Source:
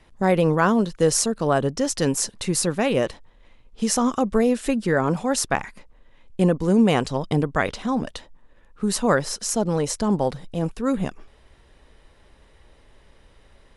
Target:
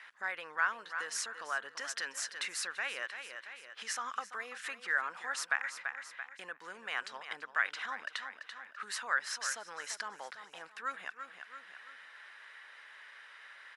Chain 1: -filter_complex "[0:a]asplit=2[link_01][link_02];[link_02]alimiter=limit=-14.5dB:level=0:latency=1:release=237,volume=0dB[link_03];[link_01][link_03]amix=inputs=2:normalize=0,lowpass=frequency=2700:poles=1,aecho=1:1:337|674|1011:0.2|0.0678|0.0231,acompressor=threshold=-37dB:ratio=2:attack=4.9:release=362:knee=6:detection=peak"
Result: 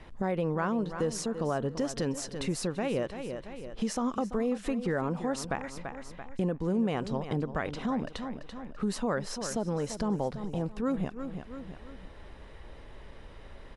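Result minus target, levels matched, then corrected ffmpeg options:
2,000 Hz band −13.5 dB
-filter_complex "[0:a]asplit=2[link_01][link_02];[link_02]alimiter=limit=-14.5dB:level=0:latency=1:release=237,volume=0dB[link_03];[link_01][link_03]amix=inputs=2:normalize=0,lowpass=frequency=2700:poles=1,aecho=1:1:337|674|1011:0.2|0.0678|0.0231,acompressor=threshold=-37dB:ratio=2:attack=4.9:release=362:knee=6:detection=peak,highpass=frequency=1600:width_type=q:width=3"

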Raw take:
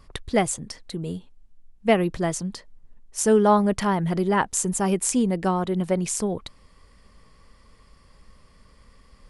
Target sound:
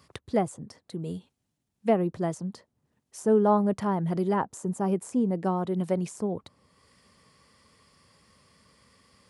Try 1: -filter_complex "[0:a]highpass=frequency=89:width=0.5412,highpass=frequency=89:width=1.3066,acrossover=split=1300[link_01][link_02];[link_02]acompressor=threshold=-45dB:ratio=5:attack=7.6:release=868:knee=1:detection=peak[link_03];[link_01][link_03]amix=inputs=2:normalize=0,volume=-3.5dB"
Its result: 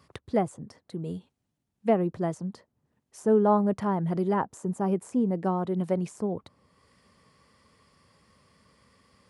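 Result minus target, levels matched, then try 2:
4,000 Hz band −3.5 dB
-filter_complex "[0:a]highpass=frequency=89:width=0.5412,highpass=frequency=89:width=1.3066,acrossover=split=1300[link_01][link_02];[link_02]acompressor=threshold=-45dB:ratio=5:attack=7.6:release=868:knee=1:detection=peak,highshelf=frequency=2700:gain=5.5[link_03];[link_01][link_03]amix=inputs=2:normalize=0,volume=-3.5dB"

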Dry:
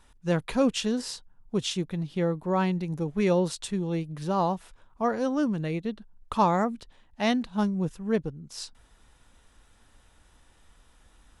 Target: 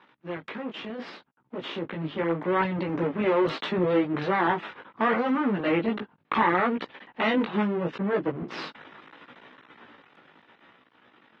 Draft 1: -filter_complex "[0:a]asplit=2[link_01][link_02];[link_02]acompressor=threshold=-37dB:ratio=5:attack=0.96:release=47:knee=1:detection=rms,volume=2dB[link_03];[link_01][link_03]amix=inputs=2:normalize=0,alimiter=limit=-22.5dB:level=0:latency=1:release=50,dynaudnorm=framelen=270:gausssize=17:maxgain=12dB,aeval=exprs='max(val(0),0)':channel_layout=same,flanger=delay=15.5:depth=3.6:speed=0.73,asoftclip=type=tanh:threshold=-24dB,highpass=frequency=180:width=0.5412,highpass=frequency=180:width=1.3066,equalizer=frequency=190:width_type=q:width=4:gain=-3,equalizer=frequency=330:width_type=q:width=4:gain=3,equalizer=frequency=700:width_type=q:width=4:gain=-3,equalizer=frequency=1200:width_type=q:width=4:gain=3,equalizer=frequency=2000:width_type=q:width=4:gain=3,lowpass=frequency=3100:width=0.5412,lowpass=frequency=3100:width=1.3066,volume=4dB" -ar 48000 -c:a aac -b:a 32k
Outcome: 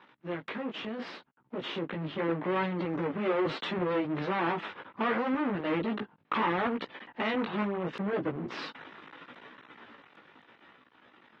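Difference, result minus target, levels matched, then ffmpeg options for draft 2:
soft clipping: distortion +13 dB
-filter_complex "[0:a]asplit=2[link_01][link_02];[link_02]acompressor=threshold=-37dB:ratio=5:attack=0.96:release=47:knee=1:detection=rms,volume=2dB[link_03];[link_01][link_03]amix=inputs=2:normalize=0,alimiter=limit=-22.5dB:level=0:latency=1:release=50,dynaudnorm=framelen=270:gausssize=17:maxgain=12dB,aeval=exprs='max(val(0),0)':channel_layout=same,flanger=delay=15.5:depth=3.6:speed=0.73,asoftclip=type=tanh:threshold=-13.5dB,highpass=frequency=180:width=0.5412,highpass=frequency=180:width=1.3066,equalizer=frequency=190:width_type=q:width=4:gain=-3,equalizer=frequency=330:width_type=q:width=4:gain=3,equalizer=frequency=700:width_type=q:width=4:gain=-3,equalizer=frequency=1200:width_type=q:width=4:gain=3,equalizer=frequency=2000:width_type=q:width=4:gain=3,lowpass=frequency=3100:width=0.5412,lowpass=frequency=3100:width=1.3066,volume=4dB" -ar 48000 -c:a aac -b:a 32k

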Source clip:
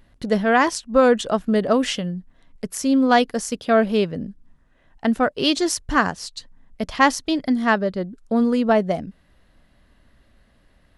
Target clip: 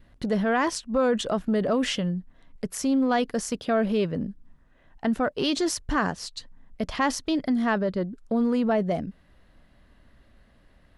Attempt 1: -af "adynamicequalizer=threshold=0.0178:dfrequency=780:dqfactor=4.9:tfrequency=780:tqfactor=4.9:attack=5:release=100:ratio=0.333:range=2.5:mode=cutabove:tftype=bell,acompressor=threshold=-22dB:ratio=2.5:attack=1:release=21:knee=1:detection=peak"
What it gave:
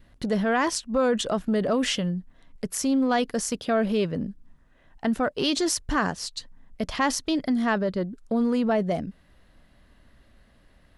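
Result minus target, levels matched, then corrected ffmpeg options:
8,000 Hz band +3.5 dB
-af "adynamicequalizer=threshold=0.0178:dfrequency=780:dqfactor=4.9:tfrequency=780:tqfactor=4.9:attack=5:release=100:ratio=0.333:range=2.5:mode=cutabove:tftype=bell,acompressor=threshold=-22dB:ratio=2.5:attack=1:release=21:knee=1:detection=peak,highshelf=frequency=4000:gain=-5"

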